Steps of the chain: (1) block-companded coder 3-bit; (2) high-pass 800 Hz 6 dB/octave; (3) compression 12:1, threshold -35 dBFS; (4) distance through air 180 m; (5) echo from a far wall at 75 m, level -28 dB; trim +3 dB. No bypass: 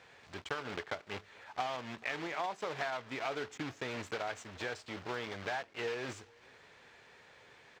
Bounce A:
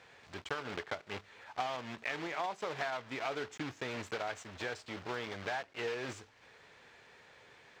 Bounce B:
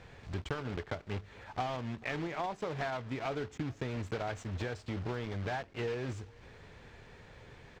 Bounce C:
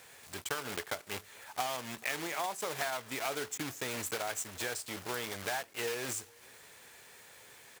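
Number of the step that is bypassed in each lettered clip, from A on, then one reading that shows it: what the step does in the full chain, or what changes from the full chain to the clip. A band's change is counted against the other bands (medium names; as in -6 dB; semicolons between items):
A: 5, echo-to-direct -29.5 dB to none; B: 2, 125 Hz band +13.5 dB; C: 4, 8 kHz band +15.0 dB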